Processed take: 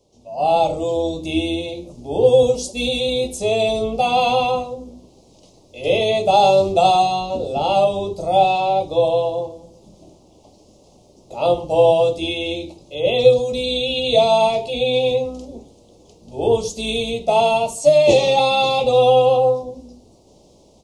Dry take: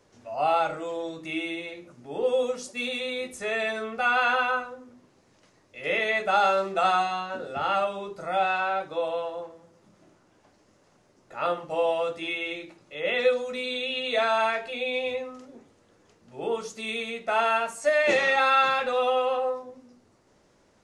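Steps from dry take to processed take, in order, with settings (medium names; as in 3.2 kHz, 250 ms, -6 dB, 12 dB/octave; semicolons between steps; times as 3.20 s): octave divider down 2 oct, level -6 dB; Chebyshev band-stop 740–3500 Hz, order 2; level rider gain up to 11 dB; trim +1.5 dB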